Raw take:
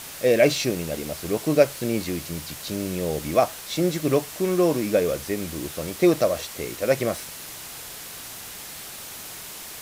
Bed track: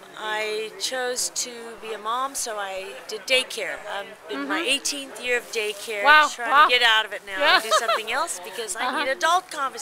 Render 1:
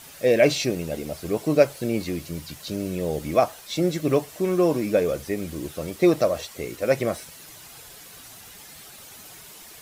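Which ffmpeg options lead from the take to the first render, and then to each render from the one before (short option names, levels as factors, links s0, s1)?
-af "afftdn=nr=9:nf=-39"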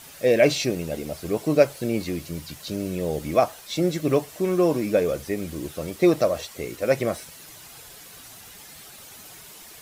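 -af anull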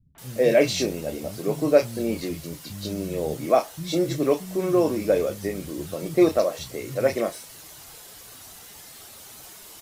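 -filter_complex "[0:a]asplit=2[s0][s1];[s1]adelay=31,volume=0.282[s2];[s0][s2]amix=inputs=2:normalize=0,acrossover=split=170|2200[s3][s4][s5];[s4]adelay=150[s6];[s5]adelay=180[s7];[s3][s6][s7]amix=inputs=3:normalize=0"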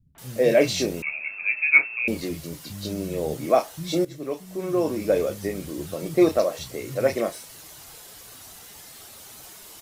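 -filter_complex "[0:a]asettb=1/sr,asplit=3[s0][s1][s2];[s0]atrim=end=1.024[s3];[s1]atrim=start=1.02:end=2.08,asetpts=PTS-STARTPTS,afade=t=in:d=0.004:c=qsin,afade=t=out:st=1.056:d=0.004:c=qsin,lowpass=f=2400:t=q:w=0.5098,lowpass=f=2400:t=q:w=0.6013,lowpass=f=2400:t=q:w=0.9,lowpass=f=2400:t=q:w=2.563,afreqshift=-2800[s4];[s2]atrim=start=2.076[s5];[s3][s4]acrossfade=d=0.004:c1=hsin:c2=qsin[s6];[s6][s5]acrossfade=d=0.004:c1=qsin:c2=hsin,asplit=2[s7][s8];[s7]atrim=end=4.05,asetpts=PTS-STARTPTS,afade=t=out:st=4.046:d=0.004:c=hsin:silence=0.177828[s9];[s8]atrim=start=4.05,asetpts=PTS-STARTPTS,afade=t=in:d=1.14:silence=0.177828[s10];[s9][s10]concat=n=2:v=0:a=1"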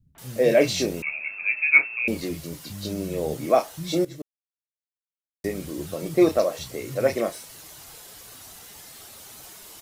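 -filter_complex "[0:a]asplit=3[s0][s1][s2];[s0]atrim=end=4.22,asetpts=PTS-STARTPTS,afade=t=out:st=4.216:d=0.004:c=hsin[s3];[s1]atrim=start=4.22:end=5.44,asetpts=PTS-STARTPTS,volume=0[s4];[s2]atrim=start=5.44,asetpts=PTS-STARTPTS,afade=t=in:d=0.004:c=hsin[s5];[s3][s4][s5]concat=n=3:v=0:a=1"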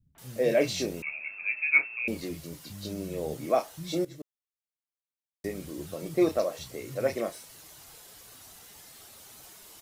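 -af "volume=0.501"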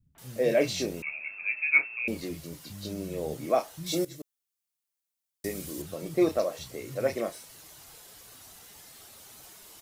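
-filter_complex "[0:a]asettb=1/sr,asplit=3[s0][s1][s2];[s0]atrim=end=3.864[s3];[s1]atrim=start=3.86:end=5.82,asetpts=PTS-STARTPTS,afade=t=in:d=0.004:c=qsin,afade=t=out:st=1.956:d=0.004:c=qsin,highshelf=f=4200:g=10.5[s4];[s2]atrim=start=5.816[s5];[s3][s4]acrossfade=d=0.004:c1=hsin:c2=qsin[s6];[s6][s5]acrossfade=d=0.004:c1=qsin:c2=hsin"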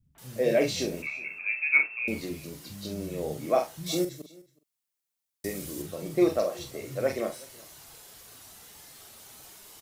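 -filter_complex "[0:a]asplit=2[s0][s1];[s1]adelay=45,volume=0.398[s2];[s0][s2]amix=inputs=2:normalize=0,aecho=1:1:370:0.0631"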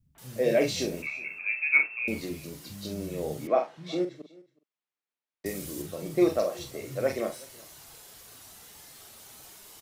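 -filter_complex "[0:a]asettb=1/sr,asplit=3[s0][s1][s2];[s0]atrim=end=3.474[s3];[s1]atrim=start=3.47:end=5.46,asetpts=PTS-STARTPTS,afade=t=in:d=0.004:c=qsin,afade=t=out:st=1.986:d=0.004:c=qsin,highpass=210,lowpass=2700[s4];[s2]atrim=start=5.456[s5];[s3][s4]acrossfade=d=0.004:c1=hsin:c2=qsin[s6];[s6][s5]acrossfade=d=0.004:c1=qsin:c2=hsin"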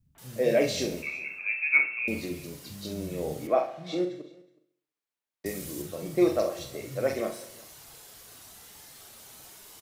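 -af "aecho=1:1:67|134|201|268|335|402:0.211|0.118|0.0663|0.0371|0.0208|0.0116"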